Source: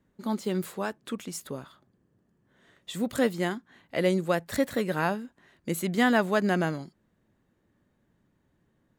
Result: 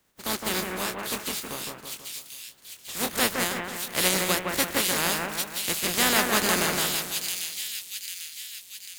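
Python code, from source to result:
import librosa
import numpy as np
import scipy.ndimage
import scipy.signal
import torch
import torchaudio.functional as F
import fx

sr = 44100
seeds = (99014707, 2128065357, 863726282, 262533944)

y = fx.spec_flatten(x, sr, power=0.31)
y = fx.doubler(y, sr, ms=25.0, db=-7.0, at=(0.51, 3.15))
y = fx.echo_split(y, sr, split_hz=2500.0, low_ms=163, high_ms=795, feedback_pct=52, wet_db=-3.0)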